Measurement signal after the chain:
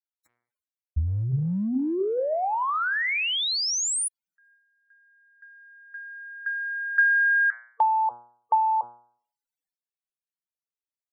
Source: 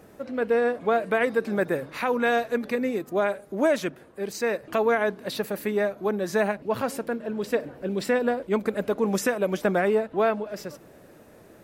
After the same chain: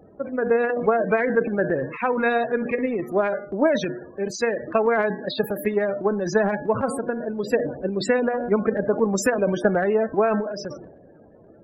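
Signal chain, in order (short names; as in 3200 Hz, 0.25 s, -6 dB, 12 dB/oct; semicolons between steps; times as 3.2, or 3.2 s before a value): de-hum 120.2 Hz, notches 19; loudest bins only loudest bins 32; transient shaper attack +6 dB, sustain +10 dB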